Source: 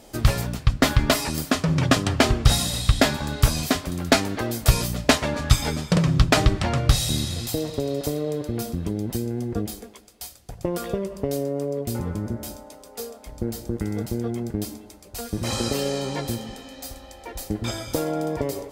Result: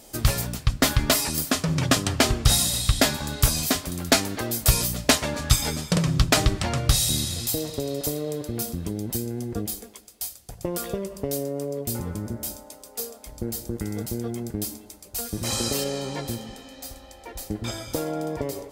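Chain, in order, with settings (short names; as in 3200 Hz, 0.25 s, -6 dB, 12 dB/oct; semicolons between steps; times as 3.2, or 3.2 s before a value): high shelf 5100 Hz +11 dB, from 15.84 s +2.5 dB; gain -3 dB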